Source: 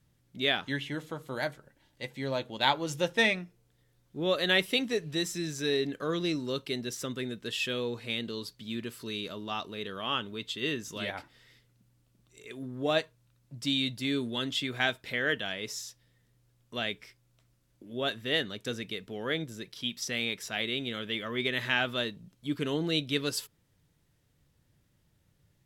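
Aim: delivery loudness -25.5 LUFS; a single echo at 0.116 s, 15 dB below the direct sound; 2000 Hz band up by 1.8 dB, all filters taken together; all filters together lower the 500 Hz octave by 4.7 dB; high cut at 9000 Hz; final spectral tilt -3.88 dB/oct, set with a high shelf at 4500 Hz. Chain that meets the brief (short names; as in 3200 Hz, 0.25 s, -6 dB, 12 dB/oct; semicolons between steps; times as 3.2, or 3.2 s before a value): LPF 9000 Hz; bell 500 Hz -6 dB; bell 2000 Hz +3.5 dB; high shelf 4500 Hz -5 dB; echo 0.116 s -15 dB; gain +6.5 dB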